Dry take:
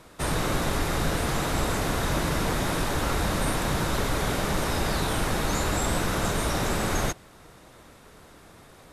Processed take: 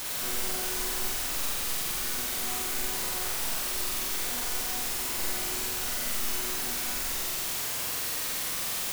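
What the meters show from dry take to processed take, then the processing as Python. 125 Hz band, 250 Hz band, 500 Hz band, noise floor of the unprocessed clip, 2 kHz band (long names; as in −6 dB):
−19.5 dB, −14.0 dB, −12.0 dB, −51 dBFS, −5.0 dB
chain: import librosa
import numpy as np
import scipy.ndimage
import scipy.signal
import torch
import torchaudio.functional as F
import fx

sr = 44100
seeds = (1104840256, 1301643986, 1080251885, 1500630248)

p1 = fx.dereverb_blind(x, sr, rt60_s=0.63)
p2 = p1 + 0.37 * np.pad(p1, (int(3.1 * sr / 1000.0), 0))[:len(p1)]
p3 = p2 + 10.0 ** (-8.5 / 20.0) * np.pad(p2, (int(82 * sr / 1000.0), 0))[:len(p2)]
p4 = fx.filter_lfo_notch(p3, sr, shape='square', hz=0.47, low_hz=600.0, high_hz=5500.0, q=0.9)
p5 = fx.resonator_bank(p4, sr, root=59, chord='fifth', decay_s=0.34)
p6 = fx.quant_dither(p5, sr, seeds[0], bits=6, dither='triangular')
y = p6 + fx.room_flutter(p6, sr, wall_m=7.9, rt60_s=1.3, dry=0)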